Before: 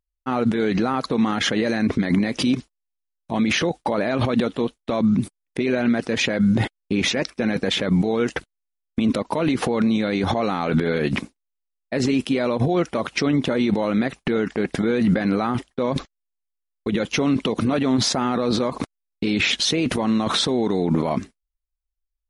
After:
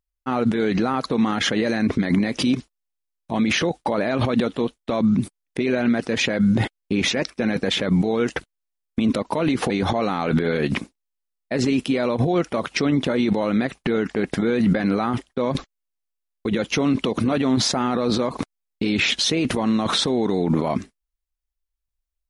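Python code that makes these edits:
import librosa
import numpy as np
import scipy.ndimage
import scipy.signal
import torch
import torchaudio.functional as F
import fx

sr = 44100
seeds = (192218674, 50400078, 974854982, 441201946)

y = fx.edit(x, sr, fx.cut(start_s=9.7, length_s=0.41), tone=tone)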